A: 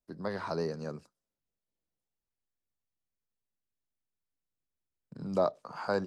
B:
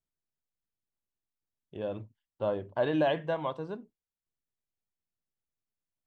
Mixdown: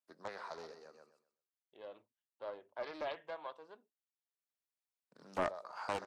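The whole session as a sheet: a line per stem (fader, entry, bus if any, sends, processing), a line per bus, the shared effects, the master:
−4.0 dB, 0.00 s, no send, echo send −14 dB, automatic ducking −23 dB, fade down 1.55 s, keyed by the second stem
−10.5 dB, 0.00 s, no send, no echo send, no processing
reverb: not used
echo: repeating echo 127 ms, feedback 25%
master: high-pass filter 600 Hz 12 dB per octave; highs frequency-modulated by the lows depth 0.55 ms

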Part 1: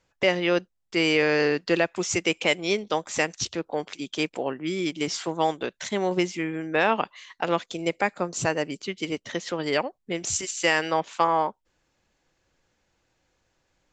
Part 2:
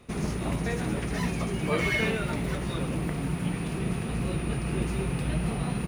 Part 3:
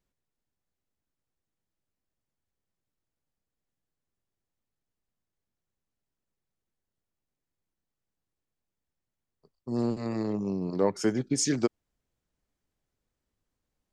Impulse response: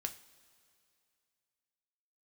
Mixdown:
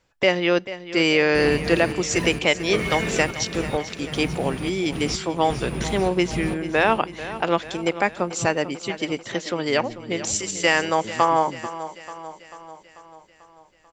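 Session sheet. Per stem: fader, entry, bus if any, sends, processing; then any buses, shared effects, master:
+2.5 dB, 0.00 s, send −20 dB, echo send −13.5 dB, notch filter 6,500 Hz, Q 17
0.0 dB, 1.00 s, no send, echo send −9 dB, gate pattern "...xxxxx..xx" 130 BPM −24 dB
−18.5 dB, 0.00 s, no send, no echo send, spectral tilt −4 dB per octave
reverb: on, pre-delay 3 ms
echo: repeating echo 441 ms, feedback 57%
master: no processing

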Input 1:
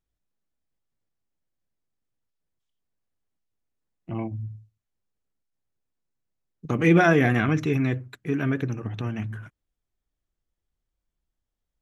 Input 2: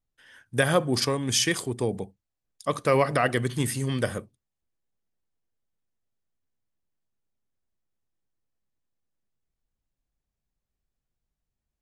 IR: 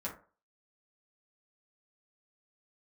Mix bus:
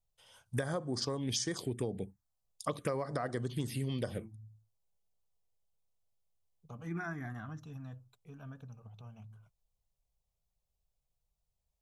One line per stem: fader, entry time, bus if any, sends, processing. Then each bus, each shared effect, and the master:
−18.0 dB, 0.00 s, no send, no processing
+1.0 dB, 0.00 s, no send, no processing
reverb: not used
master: phaser swept by the level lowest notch 280 Hz, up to 2,700 Hz, full sweep at −19.5 dBFS; downward compressor 16 to 1, threshold −31 dBFS, peak gain reduction 16.5 dB

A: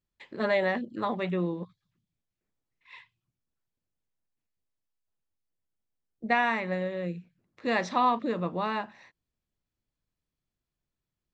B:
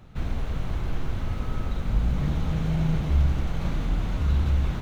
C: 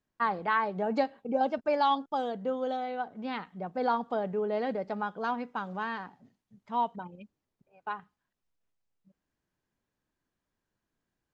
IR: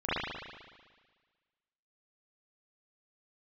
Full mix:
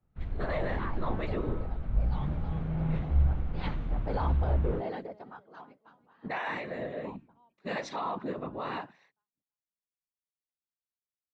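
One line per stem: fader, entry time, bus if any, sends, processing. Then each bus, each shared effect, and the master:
−2.0 dB, 0.00 s, bus A, no send, no echo send, high-shelf EQ 2,800 Hz −6.5 dB; mains-hum notches 60/120/180/240 Hz
−6.0 dB, 0.00 s, no bus, no send, no echo send, Bessel low-pass filter 1,800 Hz, order 2
−3.0 dB, 0.30 s, bus A, no send, echo send −23.5 dB, automatic ducking −16 dB, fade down 1.50 s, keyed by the first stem
bus A: 0.0 dB, random phases in short frames; brickwall limiter −26 dBFS, peak gain reduction 10.5 dB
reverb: not used
echo: repeating echo 332 ms, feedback 39%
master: multiband upward and downward expander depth 70%

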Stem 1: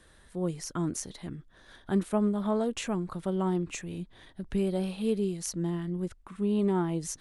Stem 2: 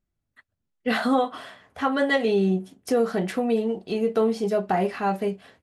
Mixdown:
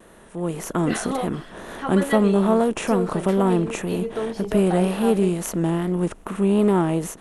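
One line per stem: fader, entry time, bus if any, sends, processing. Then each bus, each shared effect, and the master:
−3.0 dB, 0.00 s, no send, compressor on every frequency bin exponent 0.6; tape wow and flutter 72 cents; parametric band 5,100 Hz −11 dB 1.4 octaves
−16.5 dB, 0.00 s, no send, no processing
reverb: not used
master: low-shelf EQ 130 Hz −7.5 dB; automatic gain control gain up to 11.5 dB

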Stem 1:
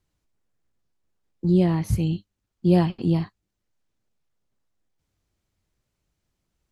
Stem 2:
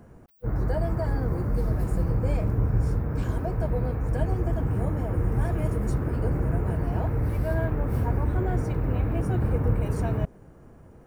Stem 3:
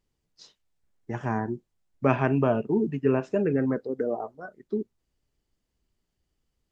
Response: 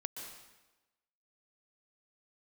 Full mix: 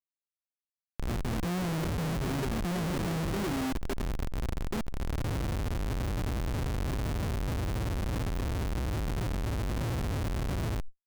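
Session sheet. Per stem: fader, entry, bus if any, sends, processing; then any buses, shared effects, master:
−4.0 dB, 0.00 s, no bus, send −7 dB, no processing
−3.0 dB, 0.55 s, bus A, no send, spectral envelope exaggerated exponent 2; automatic ducking −11 dB, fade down 1.85 s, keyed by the third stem
−1.0 dB, 0.00 s, bus A, no send, reverb reduction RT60 1 s
bus A: 0.0 dB, linear-phase brick-wall band-stop 420–4,100 Hz; brickwall limiter −23.5 dBFS, peak gain reduction 8.5 dB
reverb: on, RT60 1.1 s, pre-delay 115 ms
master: output level in coarse steps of 11 dB; comparator with hysteresis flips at −40 dBFS; envelope flattener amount 100%

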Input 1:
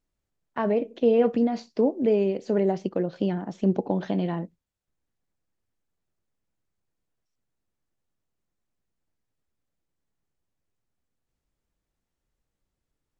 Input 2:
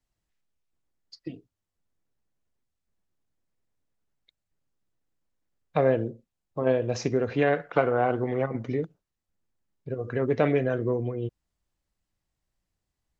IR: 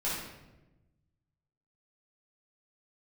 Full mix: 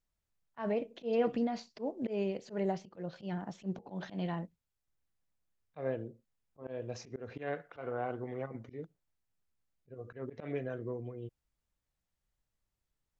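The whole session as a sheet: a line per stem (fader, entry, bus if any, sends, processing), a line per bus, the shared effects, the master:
−4.0 dB, 0.00 s, no send, parametric band 320 Hz −7.5 dB 1.6 octaves
−12.5 dB, 0.00 s, no send, no processing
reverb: not used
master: volume swells 122 ms

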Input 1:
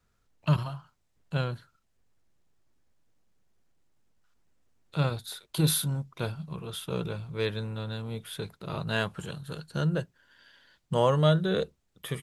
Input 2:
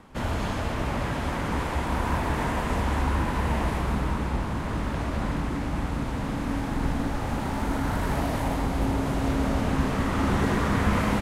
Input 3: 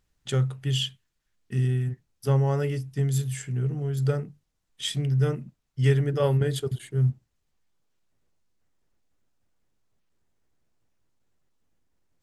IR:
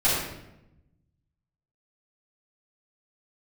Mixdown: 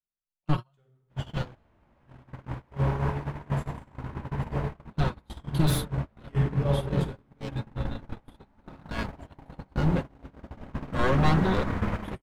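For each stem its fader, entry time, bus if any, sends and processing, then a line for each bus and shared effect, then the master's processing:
+0.5 dB, 0.00 s, no send, wavefolder on the positive side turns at −25 dBFS; comb filter 5.5 ms, depth 58%
−4.5 dB, 0.95 s, send −22 dB, running median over 5 samples
−9.5 dB, 0.45 s, send −12.5 dB, dead-zone distortion −41 dBFS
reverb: on, RT60 0.90 s, pre-delay 3 ms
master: noise gate −24 dBFS, range −33 dB; high-shelf EQ 4,000 Hz −9.5 dB

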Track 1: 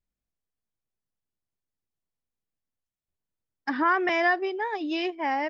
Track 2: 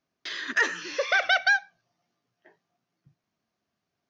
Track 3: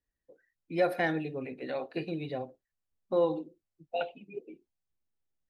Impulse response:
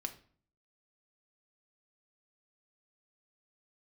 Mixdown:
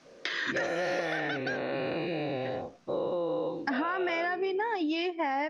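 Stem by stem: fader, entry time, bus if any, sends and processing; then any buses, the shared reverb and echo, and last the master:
−4.5 dB, 0.00 s, bus A, send −3.5 dB, no processing
−6.5 dB, 0.00 s, bus A, no send, multiband upward and downward compressor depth 100%; automatic ducking −18 dB, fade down 1.75 s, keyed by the third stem
−2.5 dB, 0.00 s, no bus, no send, every bin's largest magnitude spread in time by 480 ms
bus A: 0.0 dB, automatic gain control gain up to 12.5 dB; brickwall limiter −16 dBFS, peak gain reduction 11 dB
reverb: on, RT60 0.50 s, pre-delay 4 ms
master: low-pass filter 8,600 Hz 24 dB per octave; downward compressor, threshold −28 dBFS, peak gain reduction 11 dB

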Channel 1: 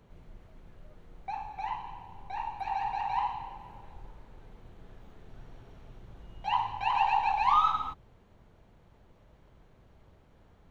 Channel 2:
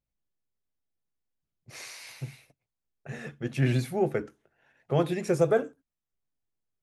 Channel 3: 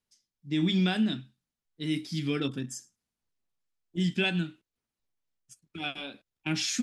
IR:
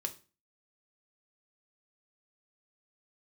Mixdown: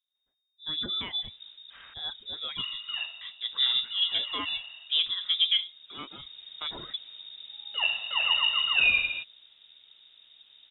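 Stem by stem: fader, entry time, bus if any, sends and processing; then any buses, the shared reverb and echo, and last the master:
+1.0 dB, 1.30 s, no send, automatic ducking −7 dB, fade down 0.20 s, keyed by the second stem
−2.0 dB, 0.00 s, muted 0:01.94–0:03.21, no send, phase distortion by the signal itself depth 0.05 ms; Gaussian smoothing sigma 2.9 samples
−6.0 dB, 0.15 s, no send, reverb reduction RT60 0.87 s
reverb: not used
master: voice inversion scrambler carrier 3,700 Hz

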